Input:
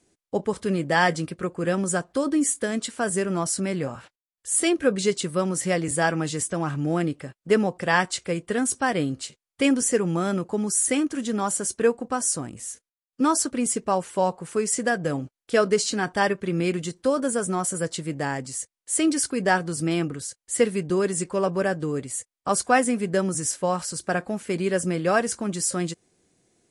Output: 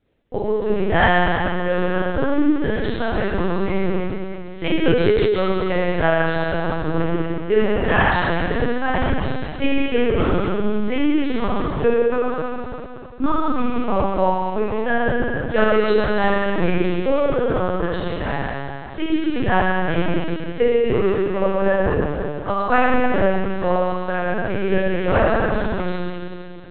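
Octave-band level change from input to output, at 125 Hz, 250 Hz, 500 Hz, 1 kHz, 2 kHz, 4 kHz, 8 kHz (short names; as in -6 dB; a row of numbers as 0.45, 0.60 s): +5.5 dB, +4.0 dB, +6.0 dB, +5.5 dB, +5.5 dB, +1.5 dB, under -40 dB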